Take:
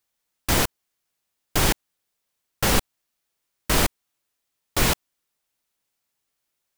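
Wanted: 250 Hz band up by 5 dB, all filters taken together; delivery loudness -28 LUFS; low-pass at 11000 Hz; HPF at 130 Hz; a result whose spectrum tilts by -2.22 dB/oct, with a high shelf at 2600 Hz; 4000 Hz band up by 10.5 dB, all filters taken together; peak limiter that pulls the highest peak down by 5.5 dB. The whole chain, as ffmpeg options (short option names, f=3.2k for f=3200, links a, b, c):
-af "highpass=130,lowpass=11k,equalizer=f=250:t=o:g=7,highshelf=f=2.6k:g=9,equalizer=f=4k:t=o:g=5.5,volume=-8dB,alimiter=limit=-15.5dB:level=0:latency=1"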